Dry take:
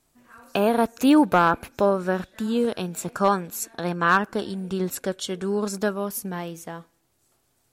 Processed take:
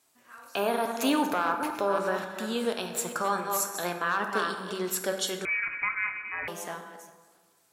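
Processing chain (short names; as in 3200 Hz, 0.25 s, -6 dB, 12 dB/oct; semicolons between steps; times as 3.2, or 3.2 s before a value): reverse delay 0.284 s, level -11 dB; HPF 800 Hz 6 dB/oct; limiter -19 dBFS, peak gain reduction 11 dB; plate-style reverb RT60 1.5 s, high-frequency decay 0.5×, DRR 5 dB; 5.45–6.48 inverted band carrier 2700 Hz; gain +1.5 dB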